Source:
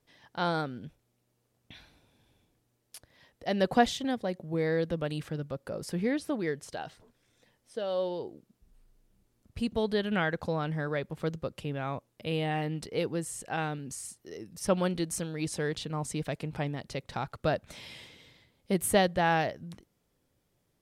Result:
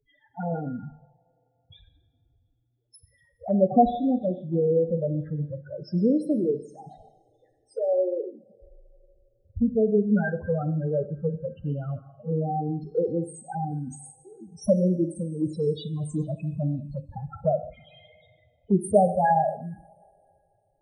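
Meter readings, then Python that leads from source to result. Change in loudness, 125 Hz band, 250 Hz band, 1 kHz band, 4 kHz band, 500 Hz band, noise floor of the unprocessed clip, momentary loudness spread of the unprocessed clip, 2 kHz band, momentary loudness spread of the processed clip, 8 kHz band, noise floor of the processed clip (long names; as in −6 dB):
+5.5 dB, +6.5 dB, +7.0 dB, +5.0 dB, below −10 dB, +6.0 dB, −76 dBFS, 17 LU, −6.5 dB, 16 LU, −7.0 dB, −70 dBFS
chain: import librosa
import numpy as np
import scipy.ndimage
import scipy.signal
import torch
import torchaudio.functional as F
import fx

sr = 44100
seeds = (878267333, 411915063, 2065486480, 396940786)

y = fx.spec_topn(x, sr, count=4)
y = fx.rev_double_slope(y, sr, seeds[0], early_s=0.84, late_s=3.2, knee_db=-21, drr_db=9.0)
y = fx.env_phaser(y, sr, low_hz=200.0, high_hz=3100.0, full_db=-29.5)
y = F.gain(torch.from_numpy(y), 8.5).numpy()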